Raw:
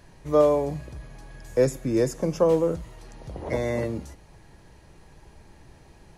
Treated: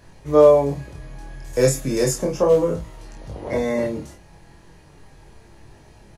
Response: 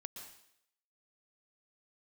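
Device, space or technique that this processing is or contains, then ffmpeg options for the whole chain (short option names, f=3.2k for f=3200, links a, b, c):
double-tracked vocal: -filter_complex "[0:a]asettb=1/sr,asplit=3[a][b][c];[a]atrim=end=1.534[d];[b]atrim=start=1.53:end=2.22,asetpts=PTS-STARTPTS,afade=t=in:d=0.004:c=qsin,afade=t=out:st=0.686:d=0.004:c=qsin,highshelf=f=2.7k:g=10.5[e];[c]atrim=start=2.216[f];[d][e]acrossfade=d=0.004:c1=hsin:c2=qsin[g];[g][f]acrossfade=d=0.004:c1=qsin:c2=hsin,asplit=2[h][i];[i]adelay=29,volume=-5dB[j];[h][j]amix=inputs=2:normalize=0,flanger=delay=19.5:depth=3.6:speed=0.34,volume=5.5dB"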